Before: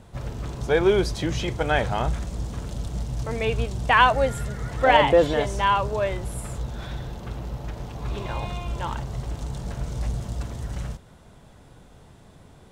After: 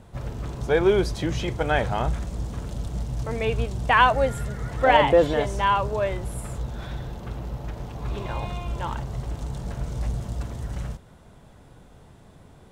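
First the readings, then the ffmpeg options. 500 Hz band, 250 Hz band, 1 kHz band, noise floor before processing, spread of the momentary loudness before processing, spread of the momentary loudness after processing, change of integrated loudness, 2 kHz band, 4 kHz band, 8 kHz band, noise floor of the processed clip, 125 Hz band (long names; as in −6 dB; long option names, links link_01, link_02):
0.0 dB, 0.0 dB, −0.5 dB, −50 dBFS, 16 LU, 16 LU, −0.5 dB, −1.0 dB, −2.0 dB, −2.5 dB, −50 dBFS, 0.0 dB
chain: -af "equalizer=frequency=5300:width_type=o:width=2.3:gain=-3"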